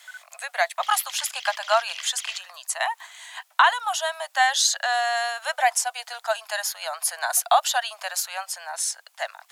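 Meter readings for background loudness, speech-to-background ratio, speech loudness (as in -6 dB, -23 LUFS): -37.0 LUFS, 12.5 dB, -24.5 LUFS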